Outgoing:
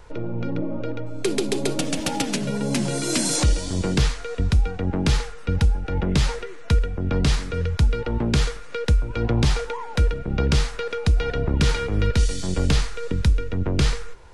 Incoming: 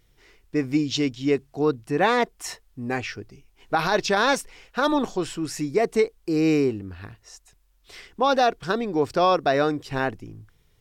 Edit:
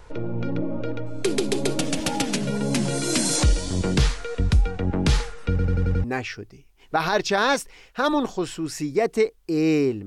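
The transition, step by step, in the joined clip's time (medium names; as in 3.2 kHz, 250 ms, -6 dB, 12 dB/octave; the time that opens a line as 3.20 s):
outgoing
5.50 s: stutter in place 0.09 s, 6 plays
6.04 s: go over to incoming from 2.83 s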